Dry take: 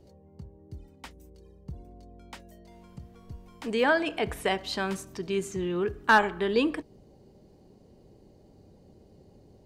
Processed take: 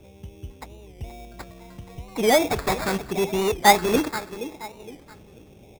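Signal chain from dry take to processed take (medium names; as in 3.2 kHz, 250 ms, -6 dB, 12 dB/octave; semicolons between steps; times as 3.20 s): on a send at -21.5 dB: bass shelf 190 Hz -7 dB + reverberation RT60 4.2 s, pre-delay 32 ms; on the sum: time stretch by phase-locked vocoder 0.6×; dynamic bell 1.5 kHz, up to -4 dB, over -38 dBFS, Q 1.5; feedback delay 476 ms, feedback 34%, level -16 dB; in parallel at -7 dB: integer overflow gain 25 dB; on the sum: LFO low-pass square 0.8 Hz 830–2600 Hz; sample-rate reducer 3 kHz, jitter 0%; warped record 45 rpm, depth 160 cents; trim +4 dB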